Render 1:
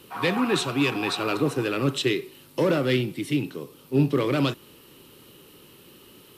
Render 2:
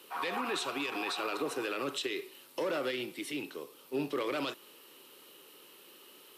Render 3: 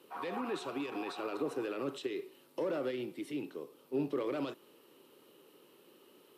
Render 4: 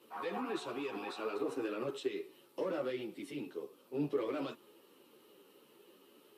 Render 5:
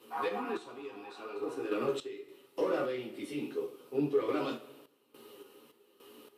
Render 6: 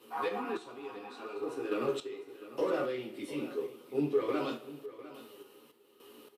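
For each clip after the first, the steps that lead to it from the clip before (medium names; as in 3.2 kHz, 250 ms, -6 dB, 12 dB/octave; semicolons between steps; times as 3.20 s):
high-pass 450 Hz 12 dB/octave; peak limiter -22 dBFS, peak gain reduction 11 dB; trim -3 dB
tilt shelf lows +7 dB; trim -5 dB
three-phase chorus; trim +2 dB
two-slope reverb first 0.32 s, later 1.6 s, from -18 dB, DRR 0.5 dB; random-step tremolo, depth 85%; trim +5.5 dB
delay 702 ms -15.5 dB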